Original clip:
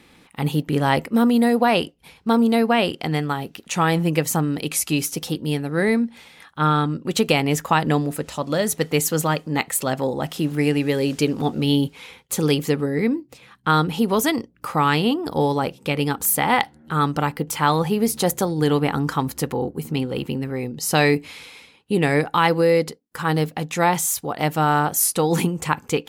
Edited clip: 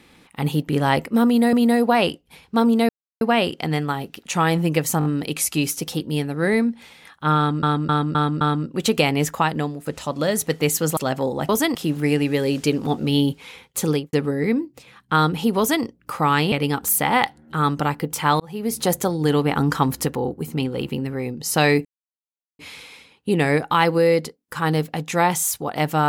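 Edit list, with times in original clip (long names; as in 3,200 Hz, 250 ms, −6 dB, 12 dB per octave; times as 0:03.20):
0:01.26–0:01.53: repeat, 2 plays
0:02.62: splice in silence 0.32 s
0:04.40: stutter 0.02 s, 4 plays
0:06.72–0:06.98: repeat, 5 plays
0:07.61–0:08.17: fade out, to −12 dB
0:09.28–0:09.78: remove
0:12.42–0:12.68: fade out and dull
0:14.13–0:14.39: duplicate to 0:10.30
0:15.07–0:15.89: remove
0:17.77–0:18.22: fade in
0:18.93–0:19.43: clip gain +3 dB
0:21.22: splice in silence 0.74 s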